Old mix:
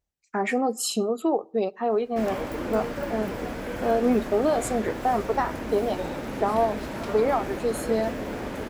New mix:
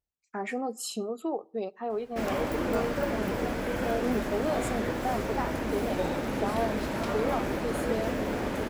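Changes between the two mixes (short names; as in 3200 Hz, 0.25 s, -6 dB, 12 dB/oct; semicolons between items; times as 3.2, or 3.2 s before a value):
speech -8.0 dB; background: send +10.0 dB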